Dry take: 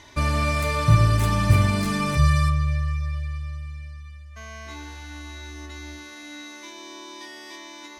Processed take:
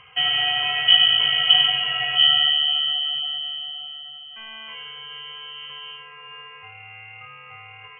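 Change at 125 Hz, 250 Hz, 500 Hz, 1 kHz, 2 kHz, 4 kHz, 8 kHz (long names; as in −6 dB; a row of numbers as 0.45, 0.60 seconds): below −25 dB, below −25 dB, below −10 dB, −4.0 dB, +5.5 dB, +22.0 dB, below −40 dB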